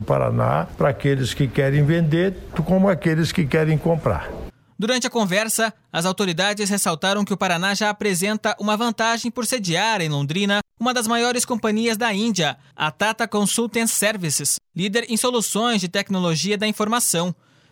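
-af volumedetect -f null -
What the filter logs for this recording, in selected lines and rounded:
mean_volume: -20.8 dB
max_volume: -5.4 dB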